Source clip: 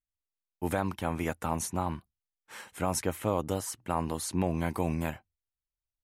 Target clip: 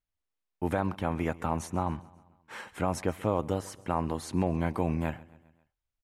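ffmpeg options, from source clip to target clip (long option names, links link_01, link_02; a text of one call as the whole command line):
ffmpeg -i in.wav -filter_complex "[0:a]lowpass=frequency=2300:poles=1,asplit=2[link_01][link_02];[link_02]acompressor=threshold=-42dB:ratio=6,volume=-0.5dB[link_03];[link_01][link_03]amix=inputs=2:normalize=0,aecho=1:1:134|268|402|536:0.0841|0.0454|0.0245|0.0132" out.wav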